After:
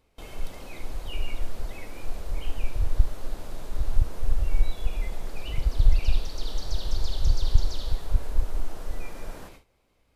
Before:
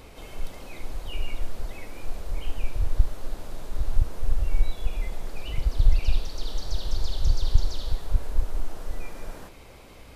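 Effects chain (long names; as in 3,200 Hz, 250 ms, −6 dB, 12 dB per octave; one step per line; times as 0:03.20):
noise gate with hold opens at −34 dBFS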